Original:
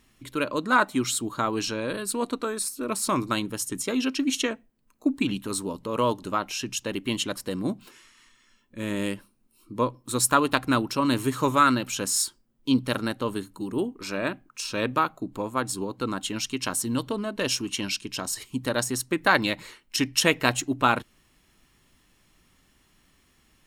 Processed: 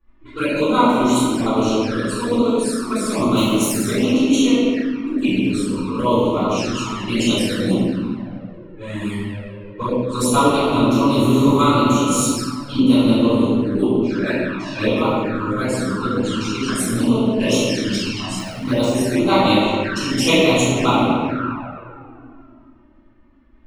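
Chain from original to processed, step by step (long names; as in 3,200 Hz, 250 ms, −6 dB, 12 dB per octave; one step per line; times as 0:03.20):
0:03.36–0:03.80: spike at every zero crossing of −25 dBFS
0:07.28–0:07.71: high-shelf EQ 2,600 Hz +9.5 dB
low-pass that shuts in the quiet parts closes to 1,400 Hz, open at −23.5 dBFS
output level in coarse steps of 9 dB
convolution reverb RT60 2.5 s, pre-delay 3 ms, DRR −18 dB
flanger swept by the level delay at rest 3.5 ms, full sweep at −6 dBFS
0:18.39–0:18.95: linearly interpolated sample-rate reduction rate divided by 3×
level −6.5 dB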